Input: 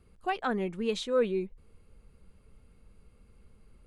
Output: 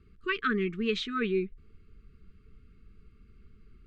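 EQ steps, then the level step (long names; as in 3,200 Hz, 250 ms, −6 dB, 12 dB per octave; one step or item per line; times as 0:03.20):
dynamic equaliser 2,300 Hz, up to +7 dB, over −49 dBFS, Q 0.85
linear-phase brick-wall band-stop 460–1,100 Hz
high-frequency loss of the air 140 metres
+2.5 dB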